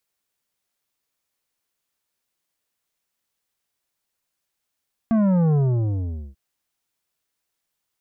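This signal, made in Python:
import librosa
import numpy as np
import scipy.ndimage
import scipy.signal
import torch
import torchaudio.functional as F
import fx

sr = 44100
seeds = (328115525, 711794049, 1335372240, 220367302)

y = fx.sub_drop(sr, level_db=-16.5, start_hz=230.0, length_s=1.24, drive_db=10.0, fade_s=0.81, end_hz=65.0)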